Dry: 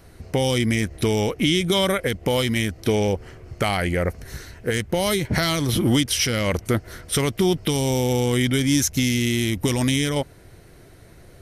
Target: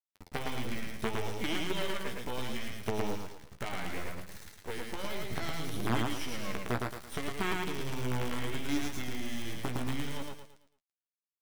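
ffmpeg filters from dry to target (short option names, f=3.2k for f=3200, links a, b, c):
-filter_complex "[0:a]acrusher=bits=3:dc=4:mix=0:aa=0.000001,bandreject=f=520:w=12,aecho=1:1:111|222|333|444|555:0.708|0.255|0.0917|0.033|0.0119,acrossover=split=3400[a][b];[b]acompressor=threshold=-30dB:ratio=4:attack=1:release=60[c];[a][c]amix=inputs=2:normalize=0,flanger=delay=9.2:depth=7:regen=27:speed=0.67:shape=sinusoidal,volume=-8.5dB"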